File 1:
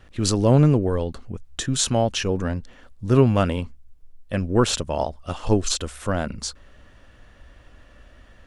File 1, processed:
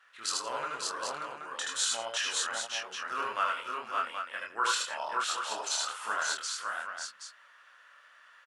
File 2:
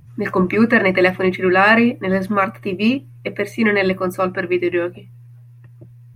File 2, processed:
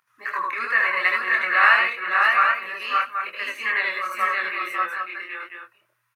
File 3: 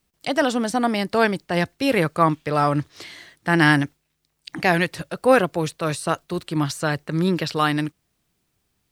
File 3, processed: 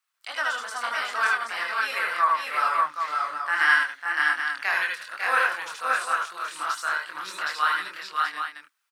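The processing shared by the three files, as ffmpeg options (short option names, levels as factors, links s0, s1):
-filter_complex "[0:a]flanger=delay=22.5:depth=4.4:speed=2.7,highpass=f=1300:t=q:w=2.8,asplit=2[s0][s1];[s1]aecho=0:1:76|78|164|549|576|777:0.531|0.668|0.141|0.447|0.708|0.447[s2];[s0][s2]amix=inputs=2:normalize=0,volume=0.531"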